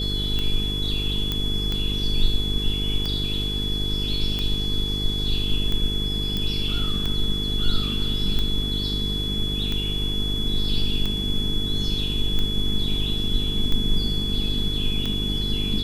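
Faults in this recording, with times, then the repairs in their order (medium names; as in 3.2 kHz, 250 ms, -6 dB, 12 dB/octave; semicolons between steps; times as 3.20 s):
buzz 50 Hz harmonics 9 -28 dBFS
tick 45 rpm -14 dBFS
whine 3.4 kHz -27 dBFS
1.32 s: pop -11 dBFS
6.37 s: pop -13 dBFS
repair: de-click; de-hum 50 Hz, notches 9; band-stop 3.4 kHz, Q 30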